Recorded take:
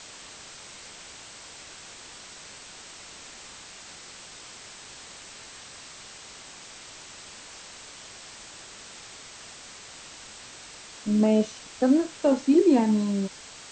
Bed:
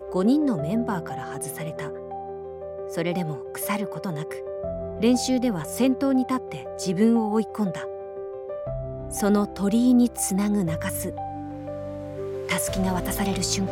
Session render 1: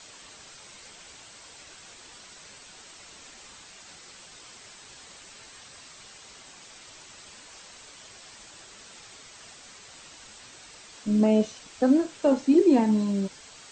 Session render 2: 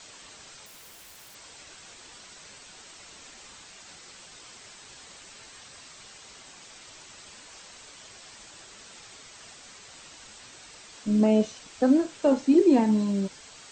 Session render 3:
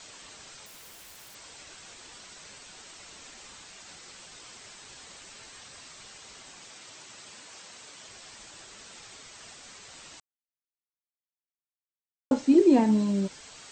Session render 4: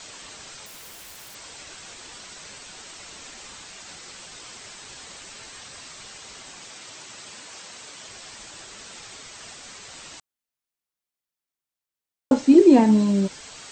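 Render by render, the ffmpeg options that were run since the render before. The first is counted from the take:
ffmpeg -i in.wav -af "afftdn=noise_reduction=6:noise_floor=-46" out.wav
ffmpeg -i in.wav -filter_complex "[0:a]asettb=1/sr,asplit=3[link_01][link_02][link_03];[link_01]atrim=end=0.664[link_04];[link_02]atrim=start=0.66:end=1.35,asetpts=PTS-STARTPTS,afade=type=in:duration=0.004:curve=qsin,afade=type=out:start_time=0.686:duration=0.004:curve=qsin,aeval=exprs='(mod(141*val(0)+1,2)-1)/141':channel_layout=same[link_05];[link_03]atrim=start=1.346[link_06];[link_04][link_05]acrossfade=duration=0.004:curve1=hsin:curve2=qsin[link_07];[link_07][link_06]acrossfade=duration=0.004:curve1=qsin:curve2=hsin" out.wav
ffmpeg -i in.wav -filter_complex "[0:a]asettb=1/sr,asplit=3[link_01][link_02][link_03];[link_01]atrim=end=6.704[link_04];[link_02]atrim=start=6.7:end=8.08,asetpts=PTS-STARTPTS,afade=type=in:duration=0.004:curve=qsin,afade=type=out:start_time=1.376:duration=0.004:curve=qsin,highpass=100[link_05];[link_03]atrim=start=8.076[link_06];[link_04][link_05]acrossfade=duration=0.004:curve1=hsin:curve2=qsin[link_07];[link_07][link_06]acrossfade=duration=0.004:curve1=qsin:curve2=hsin,asplit=3[link_08][link_09][link_10];[link_08]atrim=end=10.2,asetpts=PTS-STARTPTS,afade=type=out:start_time=10.196:duration=0.004:curve=hsin[link_11];[link_09]atrim=start=10.2:end=12.31,asetpts=PTS-STARTPTS,volume=0[link_12];[link_10]atrim=start=12.31,asetpts=PTS-STARTPTS,afade=type=in:duration=0.004:curve=hsin[link_13];[link_11][link_12][link_13]concat=n=3:v=0:a=1" out.wav
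ffmpeg -i in.wav -af "volume=6dB" out.wav

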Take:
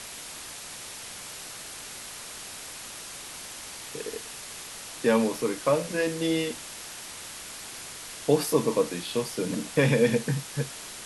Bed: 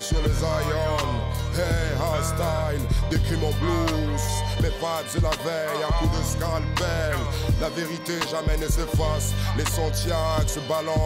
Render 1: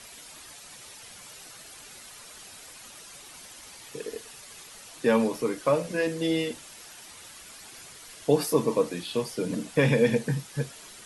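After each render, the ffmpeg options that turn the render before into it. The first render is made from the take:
ffmpeg -i in.wav -af "afftdn=noise_reduction=9:noise_floor=-41" out.wav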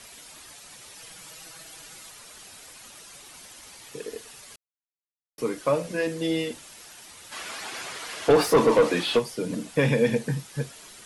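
ffmpeg -i in.wav -filter_complex "[0:a]asettb=1/sr,asplit=3[link_01][link_02][link_03];[link_01]atrim=end=0.954[link_04];[link_02]atrim=start=0.95:end=2.11,asetpts=PTS-STARTPTS,afade=type=in:duration=0.004:curve=qsin,afade=type=out:start_time=1.156:duration=0.004:curve=qsin,aecho=1:1:6.2:0.65,atrim=end_sample=51156[link_05];[link_03]atrim=start=2.106[link_06];[link_04][link_05]acrossfade=duration=0.004:curve1=hsin:curve2=qsin[link_07];[link_07][link_06]acrossfade=duration=0.004:curve1=qsin:curve2=hsin,asplit=3[link_08][link_09][link_10];[link_08]afade=type=out:start_time=7.31:duration=0.02[link_11];[link_09]asplit=2[link_12][link_13];[link_13]highpass=frequency=720:poles=1,volume=24dB,asoftclip=type=tanh:threshold=-8.5dB[link_14];[link_12][link_14]amix=inputs=2:normalize=0,lowpass=frequency=1700:poles=1,volume=-6dB,afade=type=in:start_time=7.31:duration=0.02,afade=type=out:start_time=9.18:duration=0.02[link_15];[link_10]afade=type=in:start_time=9.18:duration=0.02[link_16];[link_11][link_15][link_16]amix=inputs=3:normalize=0,asplit=3[link_17][link_18][link_19];[link_17]atrim=end=4.56,asetpts=PTS-STARTPTS,afade=type=out:start_time=4.556:duration=0.004:curve=hsin[link_20];[link_18]atrim=start=4.56:end=5.38,asetpts=PTS-STARTPTS,volume=0[link_21];[link_19]atrim=start=5.38,asetpts=PTS-STARTPTS,afade=type=in:duration=0.004:curve=hsin[link_22];[link_20][link_21][link_22]concat=n=3:v=0:a=1" out.wav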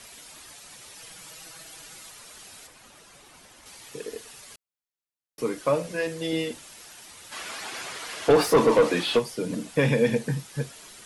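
ffmpeg -i in.wav -filter_complex "[0:a]asettb=1/sr,asplit=3[link_01][link_02][link_03];[link_01]atrim=end=2.674[link_04];[link_02]atrim=start=2.67:end=3.66,asetpts=PTS-STARTPTS,afade=type=in:duration=0.004:curve=qsin,afade=type=out:start_time=0.986:duration=0.004:curve=qsin,highshelf=frequency=2600:gain=-8.5[link_05];[link_03]atrim=start=3.656[link_06];[link_04][link_05]acrossfade=duration=0.004:curve1=hsin:curve2=qsin[link_07];[link_07][link_06]acrossfade=duration=0.004:curve1=qsin:curve2=hsin,asettb=1/sr,asplit=3[link_08][link_09][link_10];[link_08]atrim=end=5.904[link_11];[link_09]atrim=start=5.9:end=6.33,asetpts=PTS-STARTPTS,afade=type=in:duration=0.004:curve=qsin,afade=type=out:start_time=0.426:duration=0.004:curve=qsin,equalizer=frequency=260:width_type=o:width=0.77:gain=-8.5[link_12];[link_10]atrim=start=6.326[link_13];[link_11][link_12]acrossfade=duration=0.004:curve1=hsin:curve2=qsin[link_14];[link_14][link_13]acrossfade=duration=0.004:curve1=qsin:curve2=hsin" out.wav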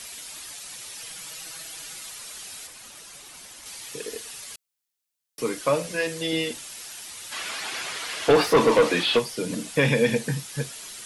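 ffmpeg -i in.wav -filter_complex "[0:a]acrossover=split=3900[link_01][link_02];[link_02]acompressor=threshold=-46dB:ratio=4:attack=1:release=60[link_03];[link_01][link_03]amix=inputs=2:normalize=0,highshelf=frequency=2300:gain=11" out.wav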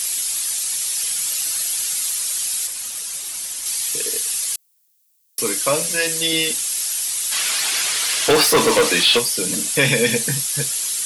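ffmpeg -i in.wav -filter_complex "[0:a]crystalizer=i=5:c=0,asplit=2[link_01][link_02];[link_02]asoftclip=type=tanh:threshold=-20dB,volume=-11dB[link_03];[link_01][link_03]amix=inputs=2:normalize=0" out.wav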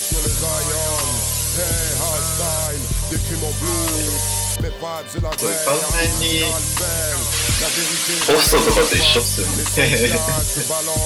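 ffmpeg -i in.wav -i bed.wav -filter_complex "[1:a]volume=0dB[link_01];[0:a][link_01]amix=inputs=2:normalize=0" out.wav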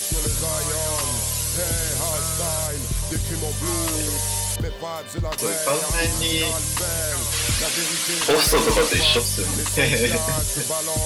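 ffmpeg -i in.wav -af "volume=-3.5dB" out.wav

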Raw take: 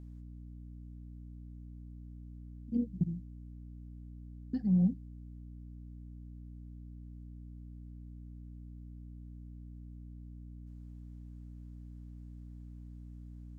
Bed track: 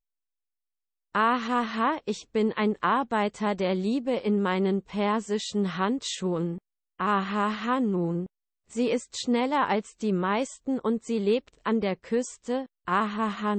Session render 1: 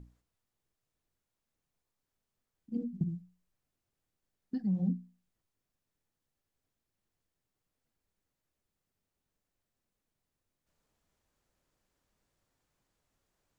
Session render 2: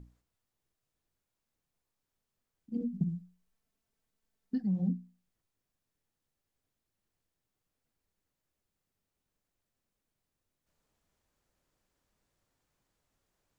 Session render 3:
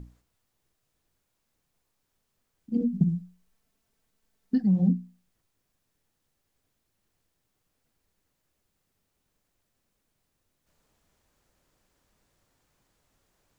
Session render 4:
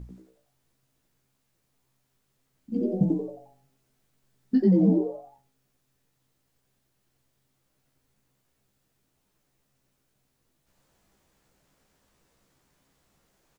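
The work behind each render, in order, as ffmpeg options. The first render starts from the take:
ffmpeg -i in.wav -af "bandreject=frequency=60:width_type=h:width=6,bandreject=frequency=120:width_type=h:width=6,bandreject=frequency=180:width_type=h:width=6,bandreject=frequency=240:width_type=h:width=6,bandreject=frequency=300:width_type=h:width=6,bandreject=frequency=360:width_type=h:width=6" out.wav
ffmpeg -i in.wav -filter_complex "[0:a]asettb=1/sr,asplit=3[link_01][link_02][link_03];[link_01]atrim=end=2.804[link_04];[link_02]atrim=start=2.8:end=4.6,asetpts=PTS-STARTPTS,afade=type=in:duration=0.004:curve=qsin,afade=type=out:start_time=1.796:duration=0.004:curve=qsin,aecho=1:1:4.5:0.56,atrim=end_sample=79380[link_05];[link_03]atrim=start=4.596[link_06];[link_04][link_05]acrossfade=duration=0.004:curve1=hsin:curve2=qsin[link_07];[link_07][link_06]acrossfade=duration=0.004:curve1=qsin:curve2=hsin" out.wav
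ffmpeg -i in.wav -af "volume=8.5dB" out.wav
ffmpeg -i in.wav -filter_complex "[0:a]asplit=2[link_01][link_02];[link_02]adelay=15,volume=-5dB[link_03];[link_01][link_03]amix=inputs=2:normalize=0,asplit=6[link_04][link_05][link_06][link_07][link_08][link_09];[link_05]adelay=89,afreqshift=130,volume=-4dB[link_10];[link_06]adelay=178,afreqshift=260,volume=-12.9dB[link_11];[link_07]adelay=267,afreqshift=390,volume=-21.7dB[link_12];[link_08]adelay=356,afreqshift=520,volume=-30.6dB[link_13];[link_09]adelay=445,afreqshift=650,volume=-39.5dB[link_14];[link_04][link_10][link_11][link_12][link_13][link_14]amix=inputs=6:normalize=0" out.wav

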